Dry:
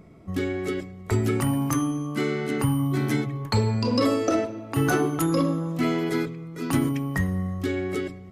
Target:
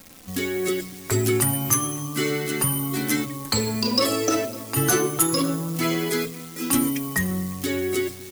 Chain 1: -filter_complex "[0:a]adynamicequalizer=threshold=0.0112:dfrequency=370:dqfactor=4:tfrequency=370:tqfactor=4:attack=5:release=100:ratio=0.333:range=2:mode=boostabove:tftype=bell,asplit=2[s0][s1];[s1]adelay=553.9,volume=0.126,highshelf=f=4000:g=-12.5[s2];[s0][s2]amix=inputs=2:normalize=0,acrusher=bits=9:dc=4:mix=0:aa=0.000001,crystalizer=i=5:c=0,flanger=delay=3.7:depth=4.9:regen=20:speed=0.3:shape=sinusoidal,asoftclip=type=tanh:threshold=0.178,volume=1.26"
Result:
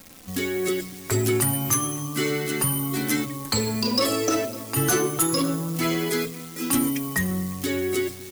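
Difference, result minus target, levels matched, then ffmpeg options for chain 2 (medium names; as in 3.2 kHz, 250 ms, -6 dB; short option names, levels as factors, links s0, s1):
saturation: distortion +7 dB
-filter_complex "[0:a]adynamicequalizer=threshold=0.0112:dfrequency=370:dqfactor=4:tfrequency=370:tqfactor=4:attack=5:release=100:ratio=0.333:range=2:mode=boostabove:tftype=bell,asplit=2[s0][s1];[s1]adelay=553.9,volume=0.126,highshelf=f=4000:g=-12.5[s2];[s0][s2]amix=inputs=2:normalize=0,acrusher=bits=9:dc=4:mix=0:aa=0.000001,crystalizer=i=5:c=0,flanger=delay=3.7:depth=4.9:regen=20:speed=0.3:shape=sinusoidal,asoftclip=type=tanh:threshold=0.376,volume=1.26"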